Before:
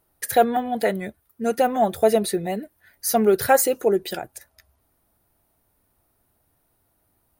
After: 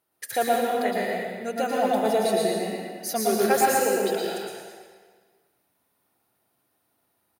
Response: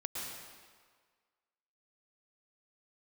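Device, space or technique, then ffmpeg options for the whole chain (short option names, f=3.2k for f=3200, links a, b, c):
PA in a hall: -filter_complex "[0:a]highpass=150,equalizer=f=3.1k:t=o:w=2.5:g=6,aecho=1:1:116:0.562[a];[1:a]atrim=start_sample=2205[b];[a][b]afir=irnorm=-1:irlink=0,volume=-6.5dB"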